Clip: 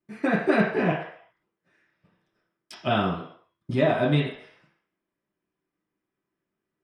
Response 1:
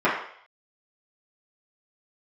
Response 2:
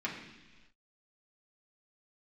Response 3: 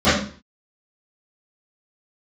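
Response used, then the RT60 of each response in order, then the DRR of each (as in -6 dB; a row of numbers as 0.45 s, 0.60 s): 1; 0.60 s, 1.3 s, 0.40 s; -11.0 dB, -5.0 dB, -20.0 dB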